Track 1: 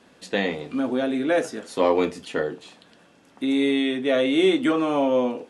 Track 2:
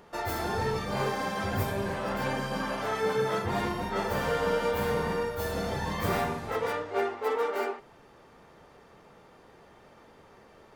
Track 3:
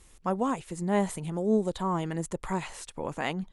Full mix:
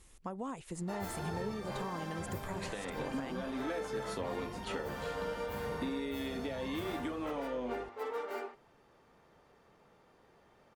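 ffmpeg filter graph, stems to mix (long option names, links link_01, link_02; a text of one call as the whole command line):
ffmpeg -i stem1.wav -i stem2.wav -i stem3.wav -filter_complex "[0:a]acompressor=threshold=-27dB:ratio=6,aeval=exprs='val(0)+0.00501*(sin(2*PI*50*n/s)+sin(2*PI*2*50*n/s)/2+sin(2*PI*3*50*n/s)/3+sin(2*PI*4*50*n/s)/4+sin(2*PI*5*50*n/s)/5)':channel_layout=same,adelay=2400,volume=-6dB[link_01];[1:a]adelay=750,volume=-9.5dB[link_02];[2:a]alimiter=limit=-19.5dB:level=0:latency=1:release=39,acompressor=threshold=-31dB:ratio=6,volume=-4dB[link_03];[link_01][link_02][link_03]amix=inputs=3:normalize=0,alimiter=level_in=3.5dB:limit=-24dB:level=0:latency=1:release=461,volume=-3.5dB" out.wav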